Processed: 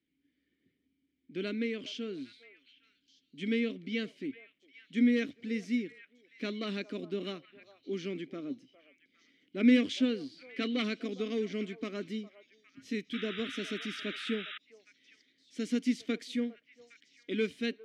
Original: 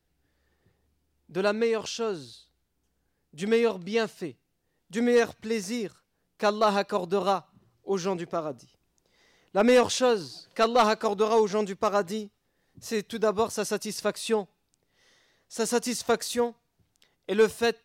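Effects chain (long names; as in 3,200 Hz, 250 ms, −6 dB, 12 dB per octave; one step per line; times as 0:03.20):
formant filter i
echo through a band-pass that steps 406 ms, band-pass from 760 Hz, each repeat 1.4 octaves, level −12 dB
sound drawn into the spectrogram noise, 0:13.13–0:14.58, 1,200–3,900 Hz −51 dBFS
level +8 dB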